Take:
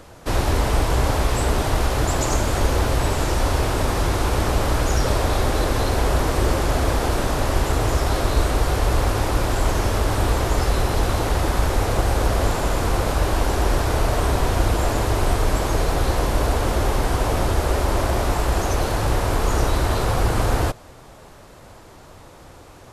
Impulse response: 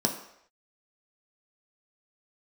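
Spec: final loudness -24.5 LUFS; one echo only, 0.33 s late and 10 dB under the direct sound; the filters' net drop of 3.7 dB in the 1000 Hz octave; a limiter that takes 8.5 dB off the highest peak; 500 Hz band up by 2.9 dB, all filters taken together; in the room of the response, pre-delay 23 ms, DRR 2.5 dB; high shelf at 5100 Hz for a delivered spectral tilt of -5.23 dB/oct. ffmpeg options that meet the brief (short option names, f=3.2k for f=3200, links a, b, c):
-filter_complex "[0:a]equalizer=f=500:t=o:g=5.5,equalizer=f=1k:t=o:g=-7.5,highshelf=f=5.1k:g=4,alimiter=limit=-13.5dB:level=0:latency=1,aecho=1:1:330:0.316,asplit=2[a][b];[1:a]atrim=start_sample=2205,adelay=23[c];[b][c]afir=irnorm=-1:irlink=0,volume=-11.5dB[d];[a][d]amix=inputs=2:normalize=0,volume=-4dB"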